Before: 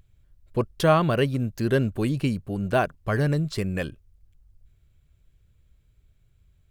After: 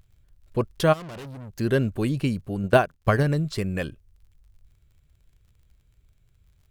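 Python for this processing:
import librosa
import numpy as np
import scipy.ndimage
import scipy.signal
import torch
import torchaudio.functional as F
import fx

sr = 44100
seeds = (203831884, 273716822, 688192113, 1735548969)

y = fx.transient(x, sr, attack_db=8, sustain_db=-9, at=(2.63, 3.23))
y = fx.dmg_crackle(y, sr, seeds[0], per_s=48.0, level_db=-53.0)
y = fx.tube_stage(y, sr, drive_db=37.0, bias=0.5, at=(0.92, 1.57), fade=0.02)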